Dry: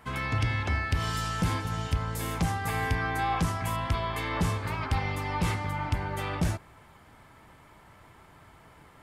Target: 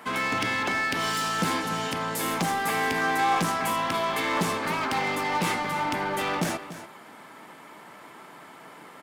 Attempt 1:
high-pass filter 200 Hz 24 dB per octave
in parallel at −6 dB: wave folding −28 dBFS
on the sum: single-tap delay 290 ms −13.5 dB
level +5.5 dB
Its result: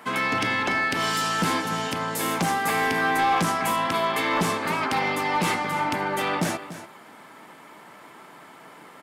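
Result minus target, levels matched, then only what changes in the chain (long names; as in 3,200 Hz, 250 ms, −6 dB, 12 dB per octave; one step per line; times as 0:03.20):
wave folding: distortion −18 dB
change: wave folding −36 dBFS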